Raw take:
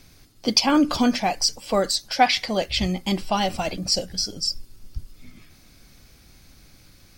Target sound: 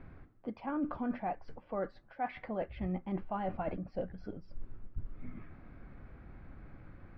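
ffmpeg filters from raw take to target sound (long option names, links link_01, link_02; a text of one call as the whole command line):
ffmpeg -i in.wav -af "areverse,acompressor=threshold=-34dB:ratio=10,areverse,lowpass=frequency=1700:width=0.5412,lowpass=frequency=1700:width=1.3066,volume=1.5dB" out.wav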